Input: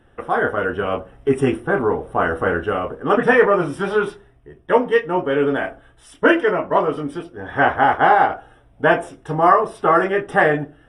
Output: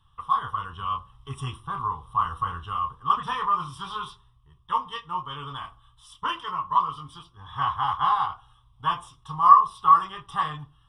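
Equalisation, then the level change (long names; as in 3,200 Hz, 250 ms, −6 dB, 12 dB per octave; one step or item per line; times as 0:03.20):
drawn EQ curve 130 Hz 0 dB, 260 Hz −22 dB, 640 Hz −27 dB, 1,100 Hz +12 dB, 1,500 Hz −15 dB, 2,300 Hz −13 dB, 3,300 Hz +8 dB, 6,900 Hz −1 dB
−5.5 dB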